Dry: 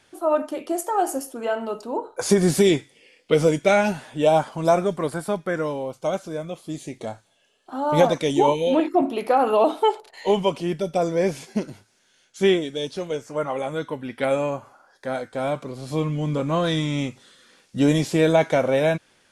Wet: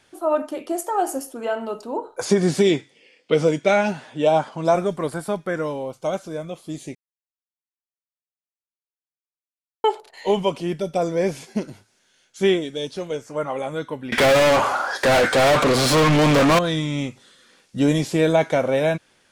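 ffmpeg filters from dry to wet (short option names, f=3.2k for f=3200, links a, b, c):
-filter_complex "[0:a]asettb=1/sr,asplit=3[a][b][c];[a]atrim=end=2.254[d];[b]atrim=start=2.25:end=4.75,asetpts=PTS-STARTPTS,afade=t=in:d=0.004:c=qsin,afade=t=out:st=2.496:d=0.004:c=qsin,highpass=120,lowpass=6.8k[e];[c]atrim=start=4.746[f];[d][e]acrossfade=d=0.004:c1=hsin:c2=qsin[g];[g][f]acrossfade=d=0.004:c1=qsin:c2=hsin,asettb=1/sr,asplit=3[h][i][j];[h]atrim=end=14.124[k];[i]atrim=start=14.12:end=16.59,asetpts=PTS-STARTPTS,afade=t=in:d=0.004:c=qsin,afade=t=out:st=2.466:d=0.004:c=qsin,asplit=2[l][m];[m]highpass=f=720:p=1,volume=40dB,asoftclip=type=tanh:threshold=-9dB[n];[l][n]amix=inputs=2:normalize=0,lowpass=f=4.7k:p=1,volume=-6dB[o];[j]atrim=start=16.586[p];[k][o]acrossfade=d=0.004:c1=hsin:c2=qsin[q];[q][p]acrossfade=d=0.004:c1=qsin:c2=hsin,asplit=3[r][s][t];[r]atrim=end=6.95,asetpts=PTS-STARTPTS,afade=t=out:st=6.946:d=0.004:c=hsin[u];[s]atrim=start=6.95:end=9.84,asetpts=PTS-STARTPTS,volume=0[v];[t]atrim=start=9.84,asetpts=PTS-STARTPTS,afade=t=in:d=0.004:c=hsin[w];[u][v][w]concat=n=3:v=0:a=1"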